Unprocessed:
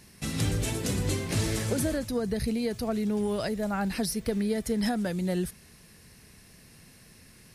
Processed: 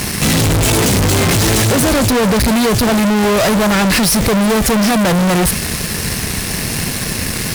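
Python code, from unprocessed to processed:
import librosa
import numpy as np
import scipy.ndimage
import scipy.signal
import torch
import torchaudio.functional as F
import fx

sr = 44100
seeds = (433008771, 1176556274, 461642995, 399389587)

y = fx.fuzz(x, sr, gain_db=53.0, gate_db=-56.0)
y = y * 10.0 ** (1.5 / 20.0)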